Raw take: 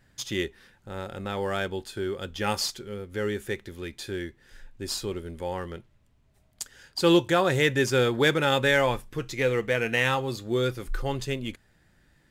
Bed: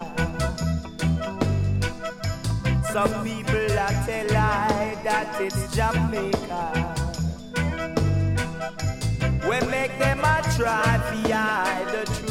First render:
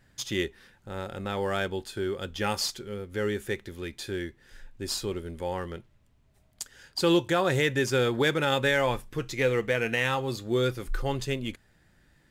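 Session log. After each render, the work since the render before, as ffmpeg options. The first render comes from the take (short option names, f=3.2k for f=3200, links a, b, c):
-af "alimiter=limit=-14.5dB:level=0:latency=1:release=236"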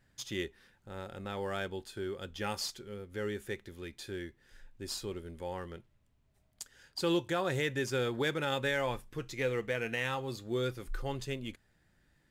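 -af "volume=-7.5dB"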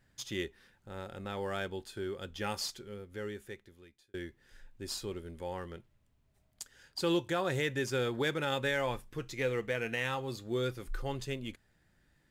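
-filter_complex "[0:a]asplit=2[a][b];[a]atrim=end=4.14,asetpts=PTS-STARTPTS,afade=t=out:st=2.79:d=1.35[c];[b]atrim=start=4.14,asetpts=PTS-STARTPTS,afade=t=in:d=0.004:c=hsin[d];[c][d]concat=n=2:v=0:a=1"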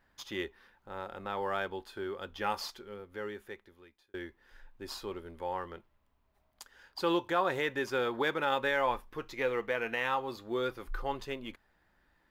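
-af "equalizer=f=125:t=o:w=1:g=-11,equalizer=f=1k:t=o:w=1:g=9,equalizer=f=8k:t=o:w=1:g=-10"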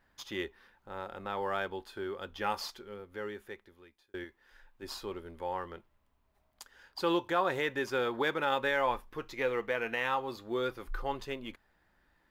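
-filter_complex "[0:a]asettb=1/sr,asplit=3[a][b][c];[a]atrim=end=4.244[d];[b]atrim=start=4.24:end=4.83,asetpts=PTS-STARTPTS,afade=t=in:d=0.004:c=qsin,afade=t=out:st=0.586:d=0.004:c=qsin,lowshelf=f=400:g=-7[e];[c]atrim=start=4.826[f];[d][e]acrossfade=d=0.004:c1=hsin:c2=qsin[g];[g][f]acrossfade=d=0.004:c1=qsin:c2=hsin"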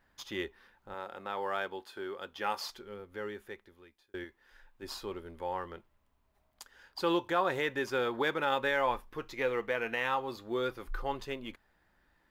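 -filter_complex "[0:a]asettb=1/sr,asplit=3[a][b][c];[a]atrim=end=0.944[d];[b]atrim=start=0.94:end=2.7,asetpts=PTS-STARTPTS,afade=t=in:d=0.004:c=qsin,afade=t=out:st=1.756:d=0.004:c=qsin,highpass=f=300:p=1[e];[c]atrim=start=2.696[f];[d][e]acrossfade=d=0.004:c1=hsin:c2=qsin[g];[g][f]acrossfade=d=0.004:c1=qsin:c2=hsin"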